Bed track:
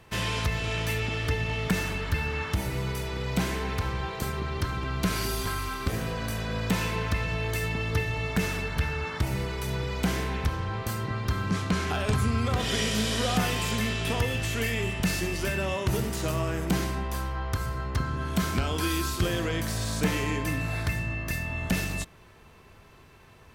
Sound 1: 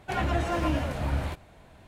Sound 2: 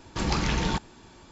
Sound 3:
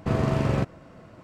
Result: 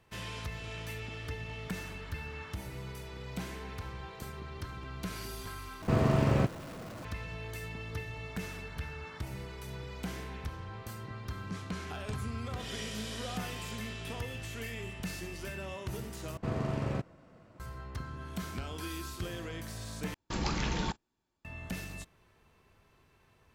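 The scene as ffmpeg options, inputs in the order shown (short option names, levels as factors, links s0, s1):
-filter_complex "[3:a]asplit=2[s0][s1];[0:a]volume=0.251[s2];[s0]aeval=exprs='val(0)+0.5*0.0112*sgn(val(0))':c=same[s3];[2:a]agate=range=0.0501:threshold=0.01:ratio=16:release=100:detection=peak[s4];[s2]asplit=4[s5][s6][s7][s8];[s5]atrim=end=5.824[s9];[s3]atrim=end=1.23,asetpts=PTS-STARTPTS,volume=0.708[s10];[s6]atrim=start=7.046:end=16.374[s11];[s1]atrim=end=1.23,asetpts=PTS-STARTPTS,volume=0.335[s12];[s7]atrim=start=17.596:end=20.144[s13];[s4]atrim=end=1.31,asetpts=PTS-STARTPTS,volume=0.473[s14];[s8]atrim=start=21.446[s15];[s9][s10]acrossfade=d=0.004:c1=hsin:c2=hsin[s16];[s16][s11]acrossfade=d=0.004:c1=hsin:c2=hsin[s17];[s17][s12]acrossfade=d=0.004:c1=hsin:c2=hsin[s18];[s18][s13]acrossfade=d=0.004:c1=hsin:c2=hsin[s19];[s19][s14]acrossfade=d=0.004:c1=hsin:c2=hsin[s20];[s20][s15]acrossfade=d=0.004:c1=hsin:c2=hsin"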